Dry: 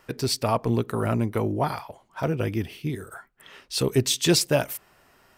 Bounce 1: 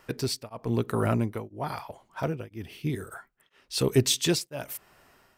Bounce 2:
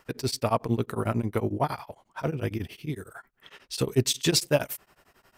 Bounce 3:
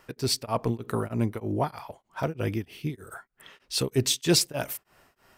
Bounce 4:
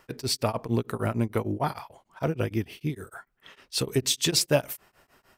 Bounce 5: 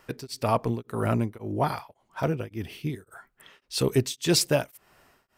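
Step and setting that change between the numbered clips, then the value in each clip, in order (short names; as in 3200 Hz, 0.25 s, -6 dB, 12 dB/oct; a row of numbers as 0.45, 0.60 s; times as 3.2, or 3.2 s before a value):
beating tremolo, nulls at: 1, 11, 3.2, 6.6, 1.8 Hz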